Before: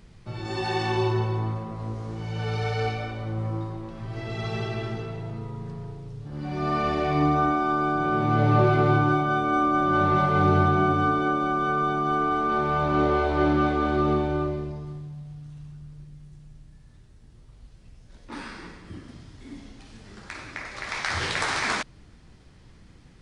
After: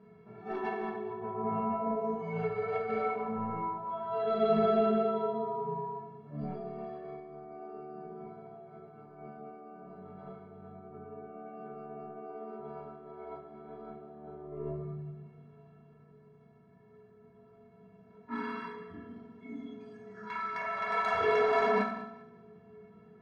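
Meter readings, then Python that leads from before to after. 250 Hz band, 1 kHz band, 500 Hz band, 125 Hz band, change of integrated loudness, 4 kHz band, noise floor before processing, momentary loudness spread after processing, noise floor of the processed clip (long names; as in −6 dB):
−11.5 dB, −10.0 dB, −5.0 dB, −19.0 dB, −9.0 dB, −15.5 dB, −51 dBFS, 22 LU, −59 dBFS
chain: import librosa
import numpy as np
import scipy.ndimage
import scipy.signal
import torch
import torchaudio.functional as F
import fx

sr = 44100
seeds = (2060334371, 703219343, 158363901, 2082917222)

y = fx.bin_compress(x, sr, power=0.6)
y = scipy.signal.sosfilt(scipy.signal.butter(2, 120.0, 'highpass', fs=sr, output='sos'), y)
y = fx.noise_reduce_blind(y, sr, reduce_db=18)
y = scipy.signal.sosfilt(scipy.signal.butter(2, 1100.0, 'lowpass', fs=sr, output='sos'), y)
y = fx.over_compress(y, sr, threshold_db=-29.0, ratio=-0.5)
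y = 10.0 ** (-18.0 / 20.0) * np.tanh(y / 10.0 ** (-18.0 / 20.0))
y = fx.stiff_resonator(y, sr, f0_hz=200.0, decay_s=0.25, stiffness=0.03)
y = fx.echo_feedback(y, sr, ms=196, feedback_pct=26, wet_db=-16)
y = fx.rev_fdn(y, sr, rt60_s=0.74, lf_ratio=1.5, hf_ratio=0.9, size_ms=13.0, drr_db=0.0)
y = y * 10.0 ** (6.5 / 20.0)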